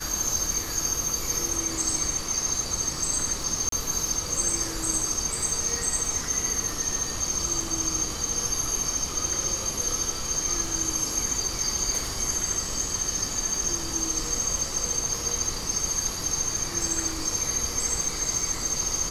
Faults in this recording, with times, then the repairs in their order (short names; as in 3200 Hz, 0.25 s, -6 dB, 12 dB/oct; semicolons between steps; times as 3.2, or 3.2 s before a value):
crackle 41/s -32 dBFS
3.69–3.72 gap 33 ms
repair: de-click; interpolate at 3.69, 33 ms